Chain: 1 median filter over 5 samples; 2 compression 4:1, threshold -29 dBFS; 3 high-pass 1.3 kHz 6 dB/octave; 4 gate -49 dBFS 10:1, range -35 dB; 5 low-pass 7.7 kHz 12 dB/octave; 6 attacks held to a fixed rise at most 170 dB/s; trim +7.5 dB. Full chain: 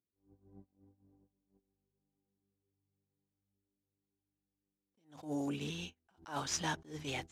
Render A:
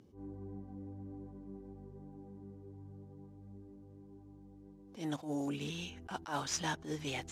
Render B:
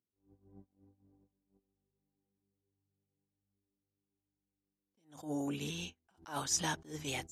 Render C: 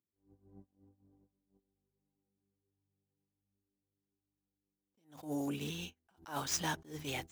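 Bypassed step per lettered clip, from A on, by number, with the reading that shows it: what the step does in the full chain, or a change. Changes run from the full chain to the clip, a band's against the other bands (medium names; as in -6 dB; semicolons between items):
4, momentary loudness spread change +6 LU; 1, crest factor change +1.5 dB; 5, 8 kHz band +1.5 dB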